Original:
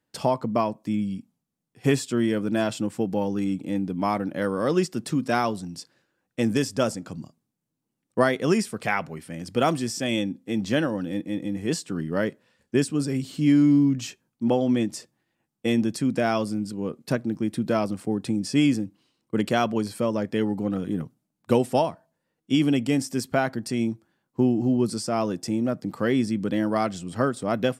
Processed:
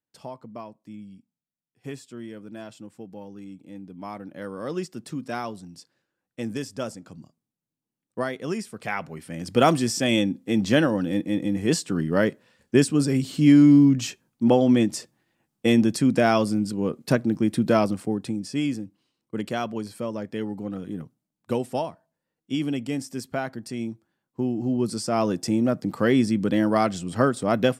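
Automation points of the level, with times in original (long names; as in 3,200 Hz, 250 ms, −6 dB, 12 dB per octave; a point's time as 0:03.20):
0:03.60 −15 dB
0:04.73 −7.5 dB
0:08.64 −7.5 dB
0:09.58 +4 dB
0:17.83 +4 dB
0:18.50 −5.5 dB
0:24.42 −5.5 dB
0:25.29 +3 dB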